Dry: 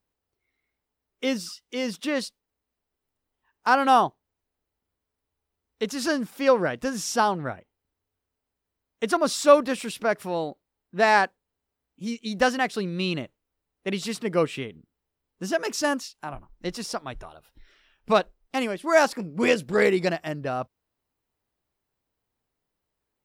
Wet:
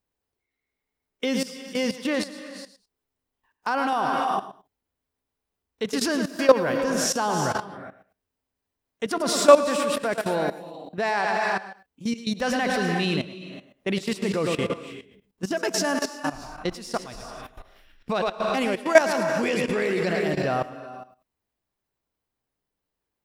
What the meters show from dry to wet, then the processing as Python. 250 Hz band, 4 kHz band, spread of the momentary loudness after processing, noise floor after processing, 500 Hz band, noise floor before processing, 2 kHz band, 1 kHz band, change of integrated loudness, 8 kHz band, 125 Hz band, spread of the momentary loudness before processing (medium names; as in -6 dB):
+1.5 dB, +2.0 dB, 20 LU, -84 dBFS, +1.5 dB, -84 dBFS, 0.0 dB, -1.0 dB, +0.5 dB, +3.5 dB, +2.5 dB, 16 LU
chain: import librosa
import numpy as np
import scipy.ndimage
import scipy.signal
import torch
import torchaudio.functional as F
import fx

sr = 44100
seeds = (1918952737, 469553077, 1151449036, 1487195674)

y = fx.notch(x, sr, hz=1300.0, q=29.0)
y = fx.echo_feedback(y, sr, ms=108, feedback_pct=15, wet_db=-9.5)
y = fx.rev_gated(y, sr, seeds[0], gate_ms=400, shape='rising', drr_db=7.0)
y = fx.level_steps(y, sr, step_db=15)
y = y * 10.0 ** (6.0 / 20.0)